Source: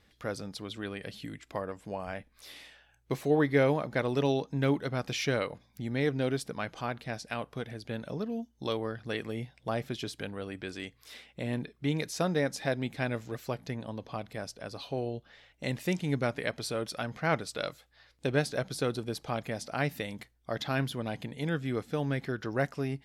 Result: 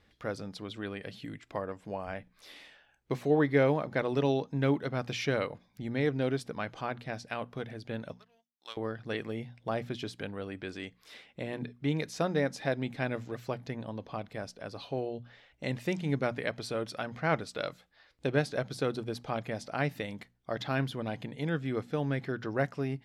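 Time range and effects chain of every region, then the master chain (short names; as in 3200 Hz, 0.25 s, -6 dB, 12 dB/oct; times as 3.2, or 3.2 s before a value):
8.12–8.77 HPF 1400 Hz + power-law curve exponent 1.4
whole clip: LPF 3800 Hz 6 dB/oct; notches 60/120/180/240 Hz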